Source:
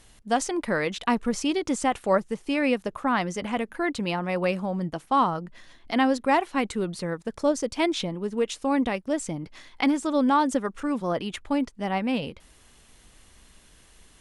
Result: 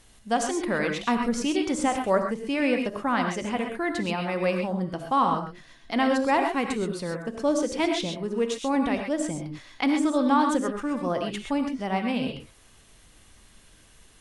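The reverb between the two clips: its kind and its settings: non-linear reverb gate 0.15 s rising, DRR 3.5 dB; gain -1.5 dB

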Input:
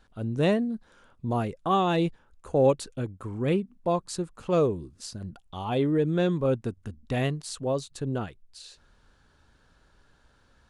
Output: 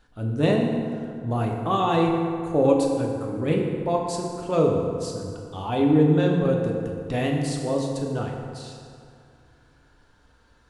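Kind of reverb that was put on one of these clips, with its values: FDN reverb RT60 2.4 s, low-frequency decay 1×, high-frequency decay 0.55×, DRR -0.5 dB

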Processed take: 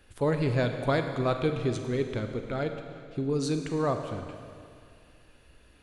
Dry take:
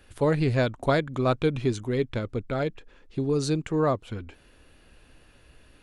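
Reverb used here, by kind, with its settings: Schroeder reverb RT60 2.3 s, combs from 33 ms, DRR 6 dB; gain -3.5 dB

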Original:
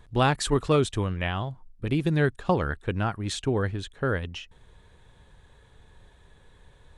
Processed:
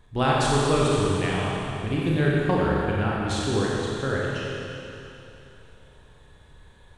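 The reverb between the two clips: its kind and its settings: Schroeder reverb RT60 3 s, combs from 29 ms, DRR -5 dB; gain -3 dB

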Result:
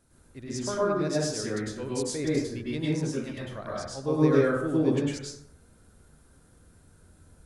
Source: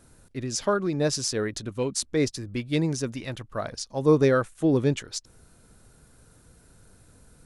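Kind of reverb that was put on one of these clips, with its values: plate-style reverb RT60 0.78 s, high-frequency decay 0.45×, pre-delay 90 ms, DRR -7 dB; gain -10.5 dB

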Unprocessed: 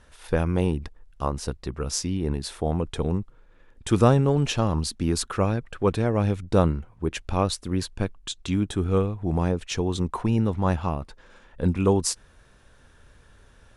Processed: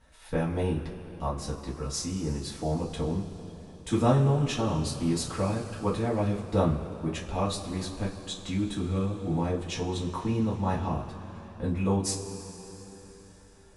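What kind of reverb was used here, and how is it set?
two-slope reverb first 0.22 s, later 4 s, from -20 dB, DRR -6 dB; gain -11 dB

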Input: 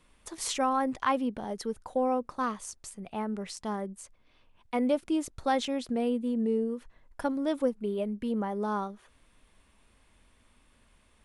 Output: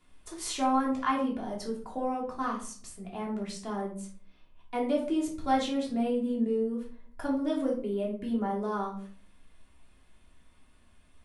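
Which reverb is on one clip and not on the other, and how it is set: shoebox room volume 390 m³, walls furnished, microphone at 3.2 m; gain -6 dB

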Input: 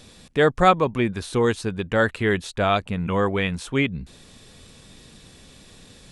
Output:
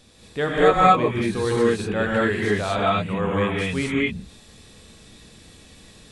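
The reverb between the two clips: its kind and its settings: non-linear reverb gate 0.26 s rising, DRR -6 dB; gain -6.5 dB

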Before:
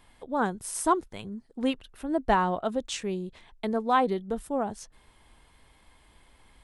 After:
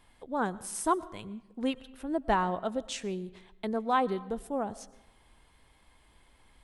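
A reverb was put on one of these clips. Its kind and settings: digital reverb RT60 0.94 s, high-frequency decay 0.65×, pre-delay 70 ms, DRR 19 dB; gain -3.5 dB

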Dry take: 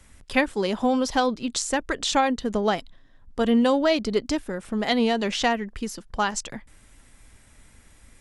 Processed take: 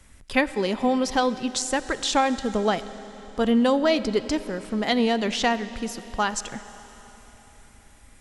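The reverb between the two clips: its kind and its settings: digital reverb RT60 4.1 s, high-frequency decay 1×, pre-delay 20 ms, DRR 13.5 dB

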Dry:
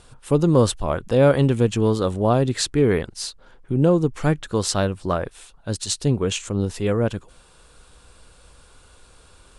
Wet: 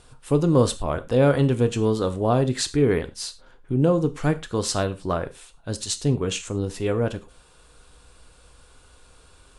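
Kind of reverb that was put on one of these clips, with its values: non-linear reverb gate 0.13 s falling, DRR 9.5 dB; gain -2.5 dB

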